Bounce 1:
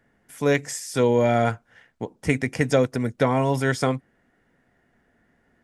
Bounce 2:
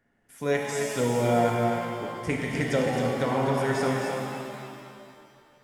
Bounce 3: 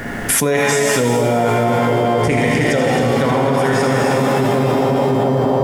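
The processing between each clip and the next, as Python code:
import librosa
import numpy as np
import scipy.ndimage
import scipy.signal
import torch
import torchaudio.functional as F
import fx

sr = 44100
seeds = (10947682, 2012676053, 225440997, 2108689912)

y1 = x + 10.0 ** (-5.5 / 20.0) * np.pad(x, (int(265 * sr / 1000.0), 0))[:len(x)]
y1 = fx.rev_shimmer(y1, sr, seeds[0], rt60_s=2.4, semitones=7, shimmer_db=-8, drr_db=0.0)
y1 = y1 * librosa.db_to_amplitude(-7.5)
y2 = fx.echo_split(y1, sr, split_hz=950.0, low_ms=709, high_ms=80, feedback_pct=52, wet_db=-6)
y2 = fx.env_flatten(y2, sr, amount_pct=100)
y2 = y2 * librosa.db_to_amplitude(5.0)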